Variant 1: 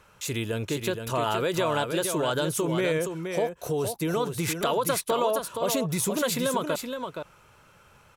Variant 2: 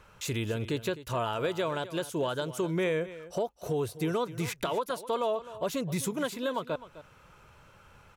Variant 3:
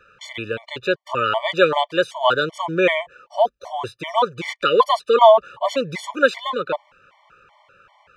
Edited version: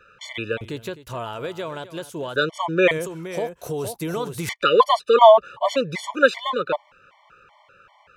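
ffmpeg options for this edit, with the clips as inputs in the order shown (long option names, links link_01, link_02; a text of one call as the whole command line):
ffmpeg -i take0.wav -i take1.wav -i take2.wav -filter_complex "[2:a]asplit=3[link_01][link_02][link_03];[link_01]atrim=end=0.612[link_04];[1:a]atrim=start=0.608:end=2.362[link_05];[link_02]atrim=start=2.358:end=2.912[link_06];[0:a]atrim=start=2.908:end=4.492[link_07];[link_03]atrim=start=4.488[link_08];[link_04][link_05]acrossfade=duration=0.004:curve1=hsin:curve2=hsin[link_09];[link_09][link_06]acrossfade=duration=0.004:curve1=hsin:curve2=hsin[link_10];[link_10][link_07]acrossfade=duration=0.004:curve1=hsin:curve2=hsin[link_11];[link_11][link_08]acrossfade=duration=0.004:curve1=hsin:curve2=hsin" out.wav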